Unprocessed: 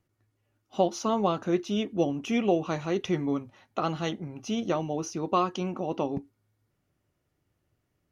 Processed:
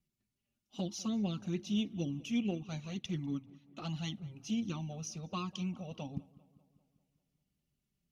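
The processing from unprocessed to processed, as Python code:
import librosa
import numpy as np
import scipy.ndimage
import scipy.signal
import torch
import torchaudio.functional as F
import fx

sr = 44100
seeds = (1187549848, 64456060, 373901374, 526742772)

p1 = fx.band_shelf(x, sr, hz=810.0, db=-13.0, octaves=2.8)
p2 = fx.transient(p1, sr, attack_db=-3, sustain_db=-8, at=(2.23, 3.85))
p3 = fx.env_flanger(p2, sr, rest_ms=5.1, full_db=-25.5)
p4 = fx.cheby_harmonics(p3, sr, harmonics=(5,), levels_db=(-32,), full_scale_db=-20.0)
p5 = p4 + fx.echo_filtered(p4, sr, ms=197, feedback_pct=58, hz=2900.0, wet_db=-21, dry=0)
y = p5 * librosa.db_to_amplitude(-2.5)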